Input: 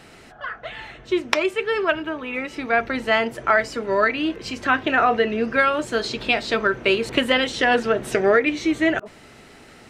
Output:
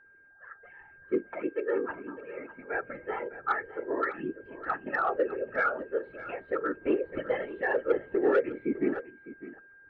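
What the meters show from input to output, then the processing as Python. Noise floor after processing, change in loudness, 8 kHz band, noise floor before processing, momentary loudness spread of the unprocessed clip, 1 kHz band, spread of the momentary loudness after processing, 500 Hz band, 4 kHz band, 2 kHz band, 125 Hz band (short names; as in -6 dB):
-56 dBFS, -10.5 dB, under -35 dB, -47 dBFS, 10 LU, -11.0 dB, 15 LU, -8.0 dB, under -30 dB, -13.0 dB, -13.5 dB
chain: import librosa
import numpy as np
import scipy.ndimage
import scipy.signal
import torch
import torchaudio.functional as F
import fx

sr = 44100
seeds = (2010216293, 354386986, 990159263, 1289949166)

p1 = fx.cvsd(x, sr, bps=64000)
p2 = scipy.signal.sosfilt(scipy.signal.butter(4, 2200.0, 'lowpass', fs=sr, output='sos'), p1)
p3 = p2 + 0.72 * np.pad(p2, (int(2.3 * sr / 1000.0), 0))[:len(p2)]
p4 = fx.whisperise(p3, sr, seeds[0])
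p5 = p4 + 10.0 ** (-38.0 / 20.0) * np.sin(2.0 * np.pi * 1600.0 * np.arange(len(p4)) / sr)
p6 = np.clip(p5, -10.0 ** (-10.5 / 20.0), 10.0 ** (-10.5 / 20.0))
p7 = p6 + fx.echo_single(p6, sr, ms=605, db=-10.0, dry=0)
p8 = fx.spectral_expand(p7, sr, expansion=1.5)
y = p8 * librosa.db_to_amplitude(-7.0)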